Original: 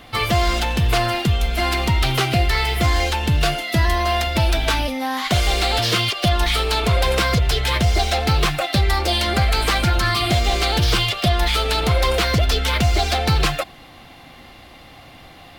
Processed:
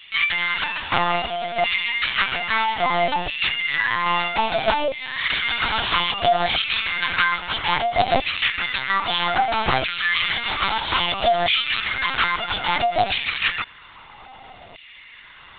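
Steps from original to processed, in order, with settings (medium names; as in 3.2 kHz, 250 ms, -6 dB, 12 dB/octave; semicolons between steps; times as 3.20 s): LFO high-pass saw down 0.61 Hz 510–2700 Hz; LPC vocoder at 8 kHz pitch kept; trim -1 dB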